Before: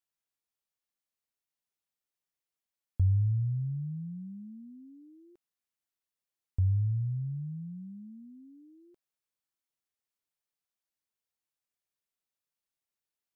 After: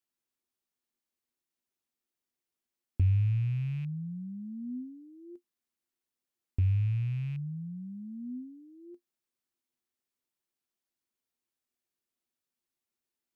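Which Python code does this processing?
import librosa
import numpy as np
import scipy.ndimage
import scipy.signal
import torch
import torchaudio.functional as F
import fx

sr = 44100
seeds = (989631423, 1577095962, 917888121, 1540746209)

y = fx.rattle_buzz(x, sr, strikes_db=-33.0, level_db=-43.0)
y = fx.small_body(y, sr, hz=(250.0, 350.0), ring_ms=100, db=13)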